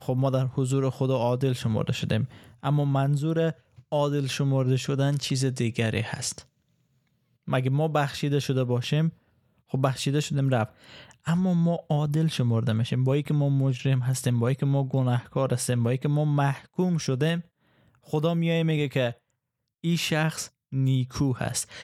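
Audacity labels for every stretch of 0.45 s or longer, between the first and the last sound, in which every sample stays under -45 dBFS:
6.420000	7.480000	silence
9.130000	9.710000	silence
17.420000	18.070000	silence
19.130000	19.840000	silence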